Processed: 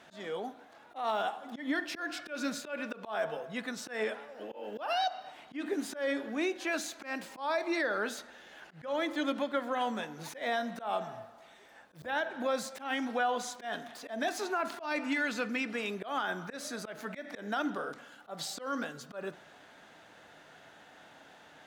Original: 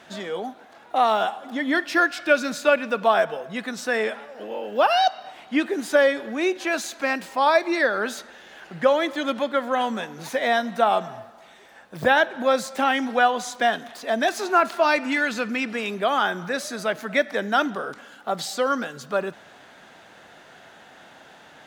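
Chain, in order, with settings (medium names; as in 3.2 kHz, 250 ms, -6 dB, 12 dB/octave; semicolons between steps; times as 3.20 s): FDN reverb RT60 0.45 s, low-frequency decay 1.2×, high-frequency decay 0.35×, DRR 13.5 dB; peak limiter -15 dBFS, peak gain reduction 10 dB; slow attack 149 ms; trim -7.5 dB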